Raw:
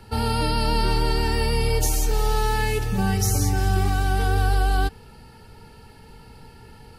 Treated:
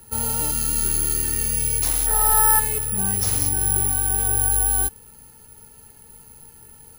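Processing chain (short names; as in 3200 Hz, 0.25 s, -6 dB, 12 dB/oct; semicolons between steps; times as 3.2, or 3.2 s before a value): 0.51–1.86 band shelf 690 Hz -12.5 dB 1.3 oct; 2.06–2.59 spectral gain 600–2100 Hz +12 dB; careless resampling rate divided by 4×, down none, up zero stuff; gain -7 dB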